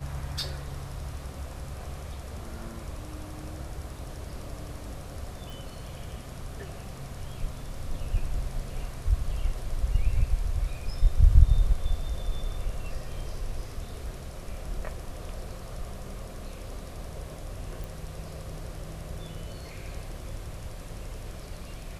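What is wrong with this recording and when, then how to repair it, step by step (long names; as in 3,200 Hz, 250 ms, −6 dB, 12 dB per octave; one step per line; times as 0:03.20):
0:05.50: click
0:17.84: click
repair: click removal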